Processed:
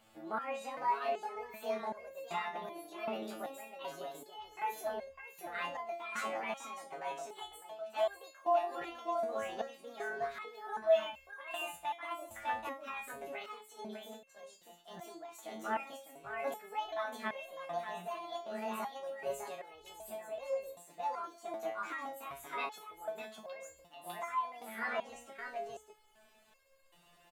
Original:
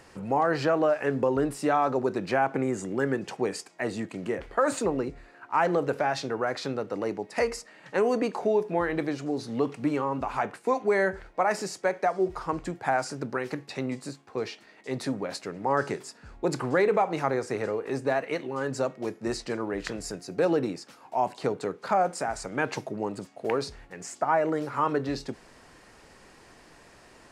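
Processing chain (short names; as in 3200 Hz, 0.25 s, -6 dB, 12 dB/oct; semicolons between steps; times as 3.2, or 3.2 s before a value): delay-line pitch shifter +8 st; small resonant body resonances 670/3500 Hz, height 7 dB; on a send: echo 0.603 s -4 dB; on the sum: stepped resonator 2.6 Hz 110–540 Hz; gain -1 dB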